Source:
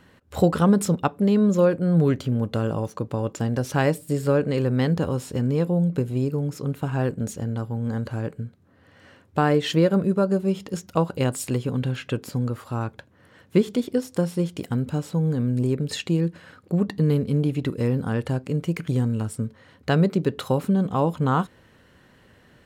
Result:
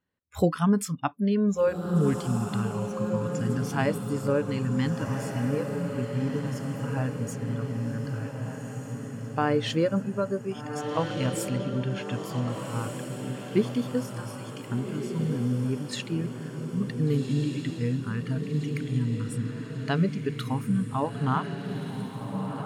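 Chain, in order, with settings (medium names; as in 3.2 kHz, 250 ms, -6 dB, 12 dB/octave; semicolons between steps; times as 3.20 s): spectral noise reduction 25 dB; echo that smears into a reverb 1542 ms, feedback 56%, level -5.5 dB; trim -4 dB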